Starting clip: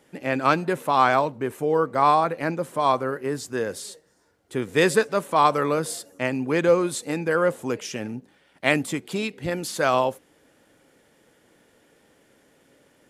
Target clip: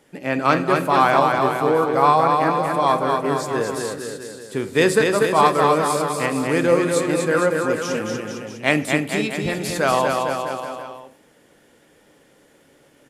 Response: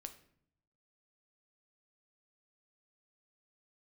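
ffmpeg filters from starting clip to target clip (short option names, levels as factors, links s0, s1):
-filter_complex "[0:a]aecho=1:1:240|456|650.4|825.4|982.8:0.631|0.398|0.251|0.158|0.1,asplit=2[s0][s1];[1:a]atrim=start_sample=2205[s2];[s1][s2]afir=irnorm=-1:irlink=0,volume=3.76[s3];[s0][s3]amix=inputs=2:normalize=0,volume=0.422"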